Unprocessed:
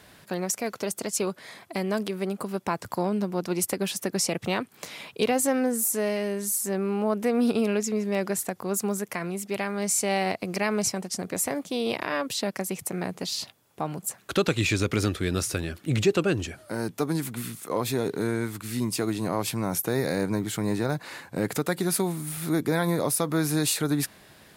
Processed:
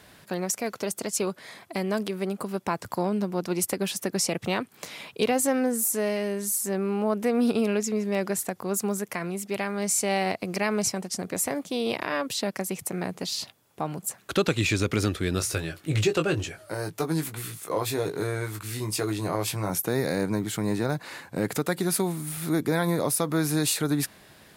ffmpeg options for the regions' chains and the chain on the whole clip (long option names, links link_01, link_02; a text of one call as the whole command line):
ffmpeg -i in.wav -filter_complex "[0:a]asettb=1/sr,asplit=3[link_01][link_02][link_03];[link_01]atrim=end=15.394[link_04];[link_02]atrim=start=15.39:end=19.7,asetpts=PTS-STARTPTS,afade=type=in:duration=0.004:curve=qsin,afade=type=out:start_time=4.306:duration=0.004:curve=qsin,equalizer=frequency=230:width_type=o:width=0.33:gain=-14.5,asplit=2[link_05][link_06];[link_06]adelay=19,volume=-6dB[link_07];[link_05][link_07]amix=inputs=2:normalize=0,atrim=end_sample=190071[link_08];[link_03]atrim=start=19.696[link_09];[link_04][link_08]acrossfade=duration=0.004:curve1=hsin:curve2=qsin[link_10];[link_10][link_09]acrossfade=duration=0.004:curve1=qsin:curve2=hsin" out.wav